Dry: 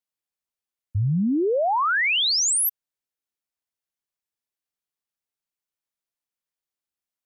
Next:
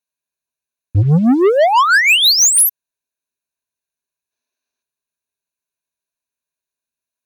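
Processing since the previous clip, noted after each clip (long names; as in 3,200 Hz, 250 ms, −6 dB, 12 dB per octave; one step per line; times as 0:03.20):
gain on a spectral selection 0:04.31–0:04.82, 220–6,600 Hz +7 dB
EQ curve with evenly spaced ripples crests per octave 1.5, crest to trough 12 dB
leveller curve on the samples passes 2
level +5.5 dB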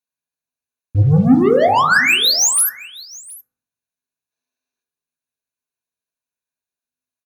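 single-tap delay 717 ms −21 dB
convolution reverb RT60 0.65 s, pre-delay 3 ms, DRR 2.5 dB
level −4 dB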